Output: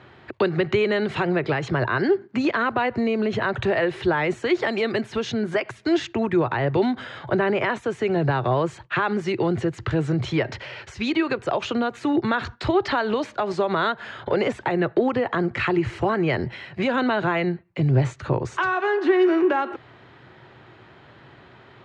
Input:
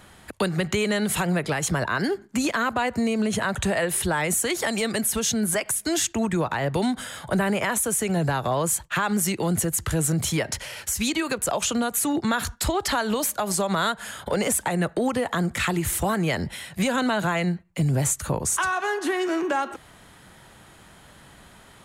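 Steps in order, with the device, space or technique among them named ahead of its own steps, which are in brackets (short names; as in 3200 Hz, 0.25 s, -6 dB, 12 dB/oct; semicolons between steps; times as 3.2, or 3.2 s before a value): guitar cabinet (speaker cabinet 98–3800 Hz, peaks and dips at 120 Hz +8 dB, 190 Hz -7 dB, 370 Hz +8 dB, 3300 Hz -4 dB); 15.16–16.83 notch 3600 Hz, Q 9.3; gain +1.5 dB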